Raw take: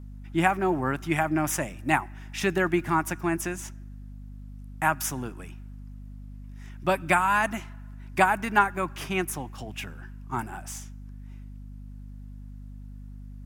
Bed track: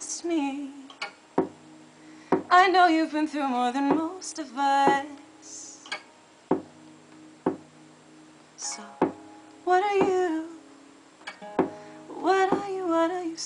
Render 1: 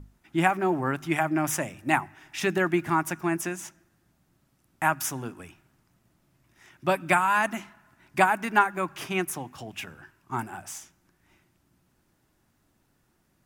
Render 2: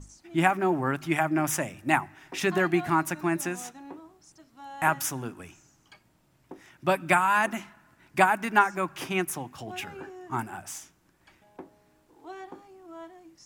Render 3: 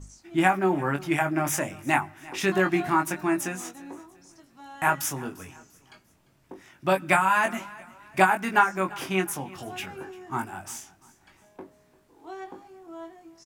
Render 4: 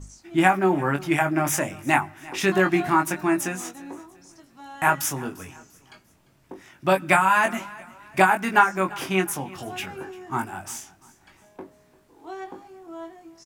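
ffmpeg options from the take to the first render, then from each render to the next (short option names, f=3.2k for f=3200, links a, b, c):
-af "bandreject=f=50:t=h:w=6,bandreject=f=100:t=h:w=6,bandreject=f=150:t=h:w=6,bandreject=f=200:t=h:w=6,bandreject=f=250:t=h:w=6"
-filter_complex "[1:a]volume=-20dB[a];[0:a][a]amix=inputs=2:normalize=0"
-filter_complex "[0:a]asplit=2[a][b];[b]adelay=21,volume=-5dB[c];[a][c]amix=inputs=2:normalize=0,aecho=1:1:346|692|1038:0.0891|0.0339|0.0129"
-af "volume=3dB,alimiter=limit=-3dB:level=0:latency=1"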